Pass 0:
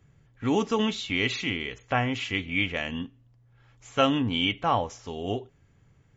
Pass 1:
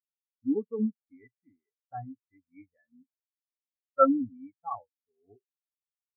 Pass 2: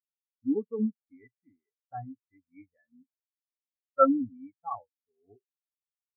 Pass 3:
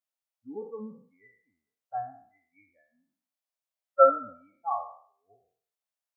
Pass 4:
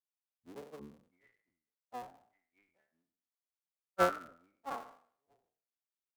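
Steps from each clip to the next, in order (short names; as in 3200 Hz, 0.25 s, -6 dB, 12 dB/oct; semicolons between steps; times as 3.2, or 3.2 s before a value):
resonant high shelf 2500 Hz -13 dB, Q 1.5; spectral expander 4:1
nothing audible
spectral trails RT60 0.52 s; resonant low shelf 450 Hz -10.5 dB, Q 3
cycle switcher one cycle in 3, muted; gain -9 dB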